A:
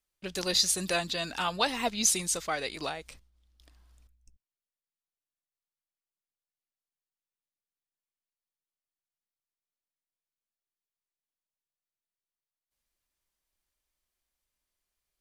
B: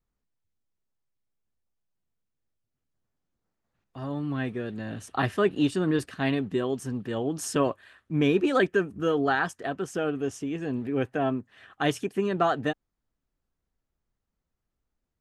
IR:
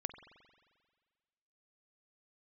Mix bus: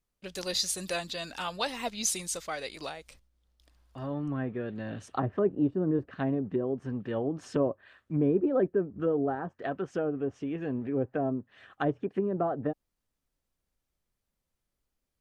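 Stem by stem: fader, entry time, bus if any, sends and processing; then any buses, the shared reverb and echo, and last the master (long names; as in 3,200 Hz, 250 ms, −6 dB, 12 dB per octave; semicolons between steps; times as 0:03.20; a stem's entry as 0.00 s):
−4.5 dB, 0.00 s, no send, no processing
−2.5 dB, 0.00 s, no send, treble cut that deepens with the level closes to 660 Hz, closed at −23 dBFS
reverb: not used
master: parametric band 550 Hz +4 dB 0.3 octaves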